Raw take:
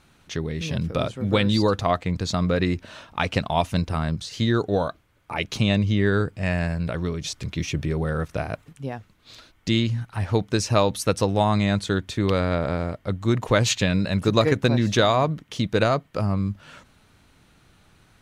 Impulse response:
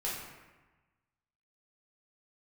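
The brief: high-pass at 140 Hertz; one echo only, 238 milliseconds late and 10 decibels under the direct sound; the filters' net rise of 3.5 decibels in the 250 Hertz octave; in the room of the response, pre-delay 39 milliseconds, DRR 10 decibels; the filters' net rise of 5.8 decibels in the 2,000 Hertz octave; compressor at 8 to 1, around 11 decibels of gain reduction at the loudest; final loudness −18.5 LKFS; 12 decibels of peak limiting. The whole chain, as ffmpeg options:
-filter_complex "[0:a]highpass=140,equalizer=frequency=250:width_type=o:gain=5.5,equalizer=frequency=2000:width_type=o:gain=7.5,acompressor=threshold=-24dB:ratio=8,alimiter=limit=-19.5dB:level=0:latency=1,aecho=1:1:238:0.316,asplit=2[link_01][link_02];[1:a]atrim=start_sample=2205,adelay=39[link_03];[link_02][link_03]afir=irnorm=-1:irlink=0,volume=-14dB[link_04];[link_01][link_04]amix=inputs=2:normalize=0,volume=12.5dB"

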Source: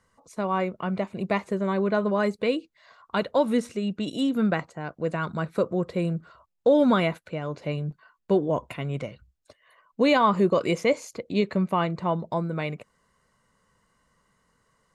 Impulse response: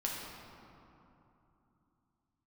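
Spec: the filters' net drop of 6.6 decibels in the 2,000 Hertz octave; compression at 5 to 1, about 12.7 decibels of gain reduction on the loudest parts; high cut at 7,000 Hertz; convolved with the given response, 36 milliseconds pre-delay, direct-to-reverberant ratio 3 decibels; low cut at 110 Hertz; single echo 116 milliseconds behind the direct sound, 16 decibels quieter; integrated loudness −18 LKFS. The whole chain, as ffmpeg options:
-filter_complex "[0:a]highpass=110,lowpass=7000,equalizer=frequency=2000:width_type=o:gain=-9,acompressor=threshold=-31dB:ratio=5,aecho=1:1:116:0.158,asplit=2[link_01][link_02];[1:a]atrim=start_sample=2205,adelay=36[link_03];[link_02][link_03]afir=irnorm=-1:irlink=0,volume=-6.5dB[link_04];[link_01][link_04]amix=inputs=2:normalize=0,volume=16dB"

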